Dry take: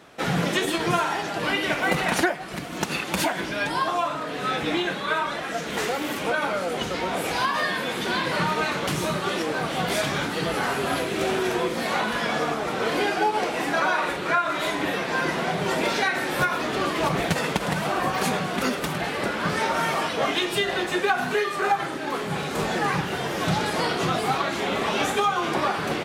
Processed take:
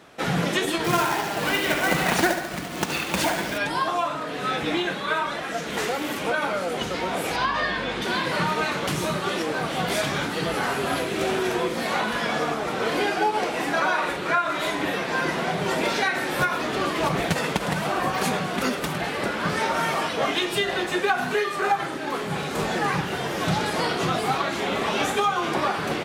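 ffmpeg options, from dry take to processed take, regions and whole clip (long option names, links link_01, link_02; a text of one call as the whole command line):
ffmpeg -i in.wav -filter_complex "[0:a]asettb=1/sr,asplit=3[link_01][link_02][link_03];[link_01]atrim=end=0.844[link_04];[link_02]atrim=start=0.84:end=3.58,asetpts=PTS-STARTPTS,afade=type=in:duration=0.004:curve=qsin,afade=type=out:start_time=2.736:duration=0.004:curve=qsin,lowpass=9900,aecho=1:1:71|142|213|284|355|426|497:0.398|0.231|0.134|0.0777|0.0451|0.0261|0.0152,atrim=end_sample=120834,acrusher=bits=2:mode=log:mix=0:aa=0.000001[link_05];[link_03]atrim=start=3.576[link_06];[link_04][link_05]acrossfade=duration=0.004:curve1=hsin:curve2=qsin[link_07];[link_07][link_06]acrossfade=duration=0.004:curve1=qsin:curve2=hsin,asettb=1/sr,asplit=3[link_08][link_09][link_10];[link_08]atrim=end=7.364[link_11];[link_09]atrim=start=7.36:end=8.02,asetpts=PTS-STARTPTS,afade=type=in:duration=0.004:curve=qsin,afade=type=out:start_time=0.656:duration=0.004:curve=qsin,lowpass=5200,aeval=exprs='val(0)+0.00708*(sin(2*PI*50*n/s)+sin(2*PI*2*50*n/s)/2+sin(2*PI*3*50*n/s)/3+sin(2*PI*4*50*n/s)/4+sin(2*PI*5*50*n/s)/5)':channel_layout=same[link_12];[link_10]atrim=start=8.016[link_13];[link_11][link_12]acrossfade=duration=0.004:curve1=hsin:curve2=qsin[link_14];[link_14][link_13]acrossfade=duration=0.004:curve1=qsin:curve2=hsin" out.wav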